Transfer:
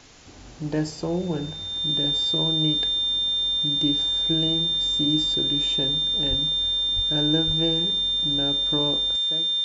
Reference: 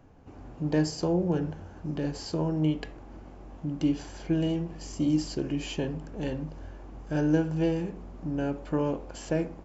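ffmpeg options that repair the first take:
-filter_complex "[0:a]bandreject=f=3.6k:w=30,asplit=3[a][b][c];[a]afade=t=out:st=6.29:d=0.02[d];[b]highpass=f=140:w=0.5412,highpass=f=140:w=1.3066,afade=t=in:st=6.29:d=0.02,afade=t=out:st=6.41:d=0.02[e];[c]afade=t=in:st=6.41:d=0.02[f];[d][e][f]amix=inputs=3:normalize=0,asplit=3[g][h][i];[g]afade=t=out:st=6.95:d=0.02[j];[h]highpass=f=140:w=0.5412,highpass=f=140:w=1.3066,afade=t=in:st=6.95:d=0.02,afade=t=out:st=7.07:d=0.02[k];[i]afade=t=in:st=7.07:d=0.02[l];[j][k][l]amix=inputs=3:normalize=0,asplit=3[m][n][o];[m]afade=t=out:st=7.46:d=0.02[p];[n]highpass=f=140:w=0.5412,highpass=f=140:w=1.3066,afade=t=in:st=7.46:d=0.02,afade=t=out:st=7.58:d=0.02[q];[o]afade=t=in:st=7.58:d=0.02[r];[p][q][r]amix=inputs=3:normalize=0,afwtdn=0.0045,asetnsamples=n=441:p=0,asendcmd='9.16 volume volume 11.5dB',volume=0dB"

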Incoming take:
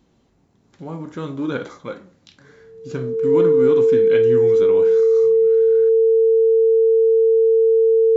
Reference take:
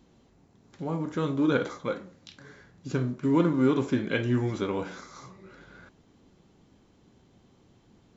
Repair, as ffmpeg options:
-af "bandreject=f=450:w=30"

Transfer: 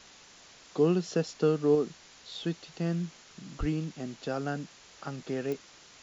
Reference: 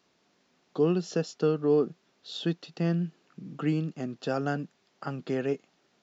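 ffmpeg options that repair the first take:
-filter_complex "[0:a]adeclick=t=4,asplit=3[a][b][c];[a]afade=t=out:st=3.59:d=0.02[d];[b]highpass=f=140:w=0.5412,highpass=f=140:w=1.3066,afade=t=in:st=3.59:d=0.02,afade=t=out:st=3.71:d=0.02[e];[c]afade=t=in:st=3.71:d=0.02[f];[d][e][f]amix=inputs=3:normalize=0,afwtdn=0.0032,asetnsamples=n=441:p=0,asendcmd='1.75 volume volume 3.5dB',volume=0dB"

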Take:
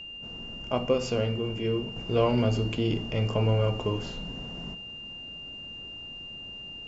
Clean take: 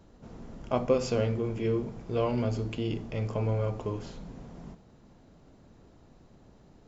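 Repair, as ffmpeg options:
-af "bandreject=f=2.8k:w=30,asetnsamples=n=441:p=0,asendcmd='1.96 volume volume -4.5dB',volume=0dB"

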